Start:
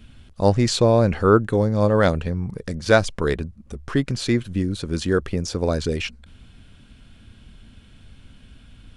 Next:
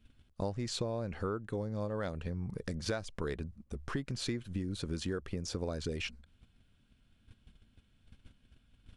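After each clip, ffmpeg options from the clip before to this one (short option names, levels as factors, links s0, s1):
-af "agate=range=0.224:threshold=0.00794:ratio=16:detection=peak,acompressor=threshold=0.0562:ratio=12,volume=0.447"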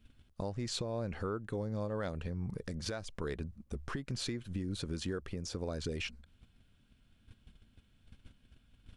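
-af "alimiter=level_in=1.58:limit=0.0631:level=0:latency=1:release=207,volume=0.631,volume=1.12"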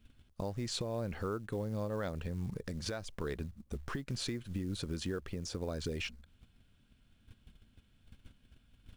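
-af "acrusher=bits=7:mode=log:mix=0:aa=0.000001"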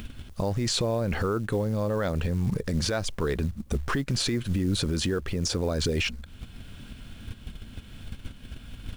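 -filter_complex "[0:a]asplit=2[s0][s1];[s1]acompressor=mode=upward:threshold=0.00891:ratio=2.5,volume=1.41[s2];[s0][s2]amix=inputs=2:normalize=0,alimiter=level_in=1.26:limit=0.0631:level=0:latency=1:release=17,volume=0.794,volume=2.37"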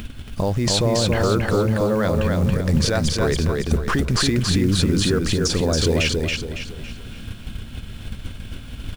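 -af "aecho=1:1:278|556|834|1112|1390:0.708|0.283|0.113|0.0453|0.0181,volume=2"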